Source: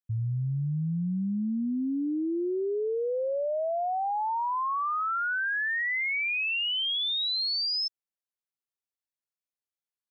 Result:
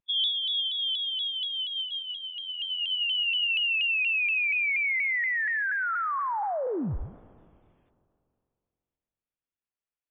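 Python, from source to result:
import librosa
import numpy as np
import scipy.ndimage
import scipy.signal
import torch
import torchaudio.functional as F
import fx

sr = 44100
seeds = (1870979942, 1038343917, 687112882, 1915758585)

y = fx.peak_eq(x, sr, hz=340.0, db=-10.5, octaves=0.59)
y = fx.rider(y, sr, range_db=4, speed_s=0.5)
y = fx.formant_shift(y, sr, semitones=-4)
y = fx.rev_spring(y, sr, rt60_s=2.5, pass_ms=(31, 52), chirp_ms=20, drr_db=17.5)
y = fx.freq_invert(y, sr, carrier_hz=3400)
y = fx.vibrato_shape(y, sr, shape='saw_down', rate_hz=4.2, depth_cents=100.0)
y = F.gain(torch.from_numpy(y), 2.5).numpy()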